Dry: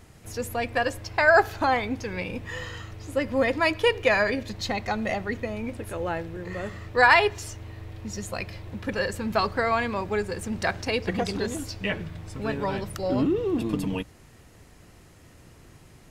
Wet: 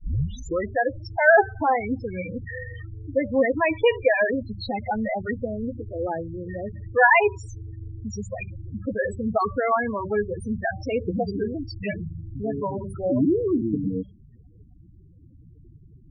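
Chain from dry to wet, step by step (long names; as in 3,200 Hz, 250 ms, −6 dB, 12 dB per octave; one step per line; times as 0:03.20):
turntable start at the beginning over 0.75 s
hum removal 192.8 Hz, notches 19
spectral peaks only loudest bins 8
level +3.5 dB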